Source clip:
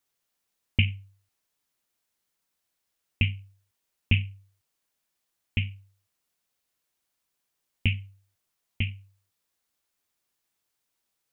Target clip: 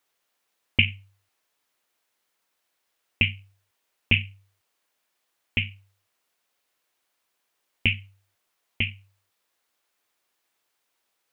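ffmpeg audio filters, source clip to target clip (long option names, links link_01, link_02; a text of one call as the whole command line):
ffmpeg -i in.wav -af "bass=frequency=250:gain=-12,treble=frequency=4000:gain=-6,volume=8dB" out.wav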